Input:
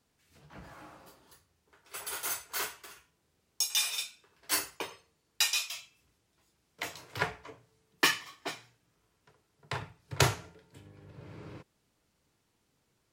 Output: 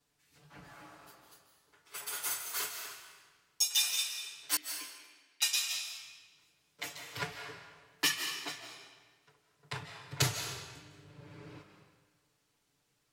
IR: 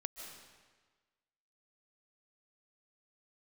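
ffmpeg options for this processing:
-filter_complex "[0:a]asettb=1/sr,asplit=3[link_01][link_02][link_03];[link_01]atrim=end=4.564[link_04];[link_02]atrim=start=4.56:end=5.42,asetpts=PTS-STARTPTS,afade=type=in:duration=0.004:curve=qsin,afade=type=out:start_time=0.856:duration=0.004:curve=qsin,asplit=3[link_05][link_06][link_07];[link_05]bandpass=frequency=270:width_type=q:width=8,volume=0dB[link_08];[link_06]bandpass=frequency=2290:width_type=q:width=8,volume=-6dB[link_09];[link_07]bandpass=frequency=3010:width_type=q:width=8,volume=-9dB[link_10];[link_08][link_09][link_10]amix=inputs=3:normalize=0[link_11];[link_03]atrim=start=5.416[link_12];[link_04][link_11]acrossfade=duration=0.004:curve1=hsin:curve2=qsin[link_13];[link_13][link_12]acrossfade=duration=0.004:curve1=qsin:curve2=hsin,acrossover=split=330|3000[link_14][link_15][link_16];[link_15]acompressor=threshold=-43dB:ratio=1.5[link_17];[link_14][link_17][link_16]amix=inputs=3:normalize=0,asplit=2[link_18][link_19];[link_19]tiltshelf=frequency=770:gain=-5[link_20];[1:a]atrim=start_sample=2205,adelay=7[link_21];[link_20][link_21]afir=irnorm=-1:irlink=0,volume=3.5dB[link_22];[link_18][link_22]amix=inputs=2:normalize=0,volume=-6.5dB"

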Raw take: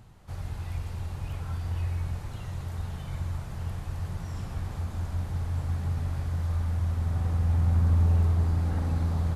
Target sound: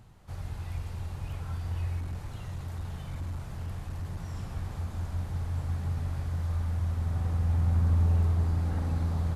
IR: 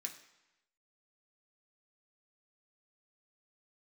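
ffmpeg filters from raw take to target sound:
-filter_complex "[0:a]asettb=1/sr,asplit=3[link_01][link_02][link_03];[link_01]atrim=end=1.994[link_04];[link_02]atrim=start=1.99:end=4.22,asetpts=PTS-STARTPTS,afade=type=in:duration=0.004:curve=qsin,afade=type=out:start_time=2.226:duration=0.004:curve=qsin,volume=29dB,asoftclip=hard,volume=-29dB[link_05];[link_03]atrim=start=4.216[link_06];[link_04][link_05]acrossfade=duration=0.004:curve1=hsin:curve2=qsin[link_07];[link_07][link_06]acrossfade=duration=0.004:curve1=qsin:curve2=hsin,volume=-2dB"

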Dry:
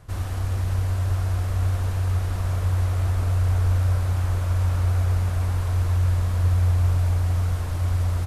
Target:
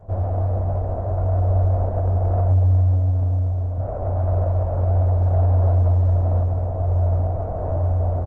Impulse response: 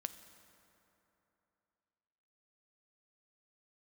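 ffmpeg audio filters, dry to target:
-filter_complex "[0:a]lowpass=frequency=650:width_type=q:width=5,asettb=1/sr,asplit=3[link_01][link_02][link_03];[link_01]atrim=end=2.504[link_04];[link_02]atrim=start=2.5:end=3.78,asetpts=PTS-STARTPTS,afade=type=in:duration=0.004:curve=qsin,afade=type=out:start_time=1.276:duration=0.004:curve=qsin,equalizer=frequency=97:width=5.2:gain=14[link_05];[link_03]atrim=start=3.776[link_06];[link_04][link_05]acrossfade=duration=0.004:curve1=hsin:curve2=qsin[link_07];[link_07][link_06]acrossfade=duration=0.004:curve1=qsin:curve2=hsin,dynaudnorm=framelen=290:gausssize=11:maxgain=15.5dB,alimiter=limit=-12dB:level=0:latency=1:release=236,acompressor=threshold=-19dB:ratio=10,bandreject=frequency=60:width_type=h:width=6,bandreject=frequency=120:width_type=h:width=6,bandreject=frequency=180:width_type=h:width=6,bandreject=frequency=240:width_type=h:width=6,bandreject=frequency=300:width_type=h:width=6,bandreject=frequency=360:width_type=h:width=6,flanger=delay=9.9:depth=9.4:regen=-44:speed=0.35:shape=triangular,asoftclip=type=tanh:threshold=-20dB,asplit=2[link_08][link_09];[link_09]adelay=20,volume=-14dB[link_10];[link_08][link_10]amix=inputs=2:normalize=0,aecho=1:1:410:0.335,volume=8dB" -ar 48000 -c:a libopus -b:a 20k

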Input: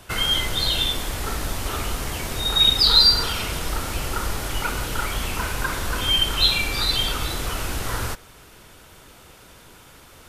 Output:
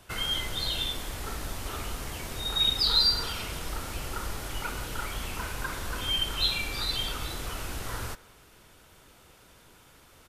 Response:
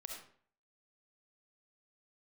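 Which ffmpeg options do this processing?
-filter_complex "[0:a]asplit=2[link_01][link_02];[link_02]adelay=210,highpass=300,lowpass=3400,asoftclip=type=hard:threshold=-12dB,volume=-21dB[link_03];[link_01][link_03]amix=inputs=2:normalize=0,volume=-8.5dB"

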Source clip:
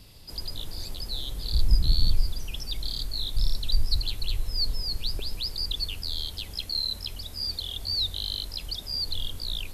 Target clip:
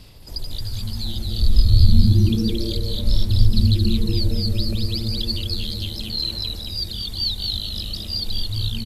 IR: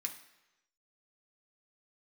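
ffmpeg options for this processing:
-filter_complex "[0:a]aphaser=in_gain=1:out_gain=1:delay=1.6:decay=0.41:speed=0.29:type=sinusoidal,atempo=1.1,asplit=2[link_01][link_02];[link_02]asplit=5[link_03][link_04][link_05][link_06][link_07];[link_03]adelay=224,afreqshift=-120,volume=-4dB[link_08];[link_04]adelay=448,afreqshift=-240,volume=-11.5dB[link_09];[link_05]adelay=672,afreqshift=-360,volume=-19.1dB[link_10];[link_06]adelay=896,afreqshift=-480,volume=-26.6dB[link_11];[link_07]adelay=1120,afreqshift=-600,volume=-34.1dB[link_12];[link_08][link_09][link_10][link_11][link_12]amix=inputs=5:normalize=0[link_13];[link_01][link_13]amix=inputs=2:normalize=0,volume=1.5dB"

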